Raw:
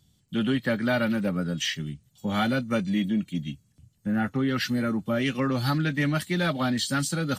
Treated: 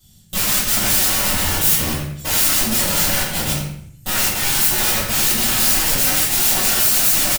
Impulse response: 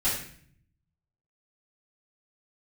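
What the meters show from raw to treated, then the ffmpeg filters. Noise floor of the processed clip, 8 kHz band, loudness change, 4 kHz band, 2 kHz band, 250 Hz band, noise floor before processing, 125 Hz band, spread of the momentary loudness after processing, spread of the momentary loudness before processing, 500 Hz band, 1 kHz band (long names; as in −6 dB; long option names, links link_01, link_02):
−46 dBFS, +23.5 dB, +12.0 dB, +13.5 dB, +7.5 dB, −3.5 dB, −66 dBFS, +1.0 dB, 9 LU, 8 LU, +0.5 dB, +7.0 dB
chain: -filter_complex "[0:a]aeval=exprs='(mod(28.2*val(0)+1,2)-1)/28.2':channel_layout=same,asplit=2[link_01][link_02];[link_02]adelay=88,lowpass=frequency=2900:poles=1,volume=-7dB,asplit=2[link_03][link_04];[link_04]adelay=88,lowpass=frequency=2900:poles=1,volume=0.34,asplit=2[link_05][link_06];[link_06]adelay=88,lowpass=frequency=2900:poles=1,volume=0.34,asplit=2[link_07][link_08];[link_08]adelay=88,lowpass=frequency=2900:poles=1,volume=0.34[link_09];[link_01][link_03][link_05][link_07][link_09]amix=inputs=5:normalize=0[link_10];[1:a]atrim=start_sample=2205[link_11];[link_10][link_11]afir=irnorm=-1:irlink=0,crystalizer=i=2.5:c=0,volume=-1dB"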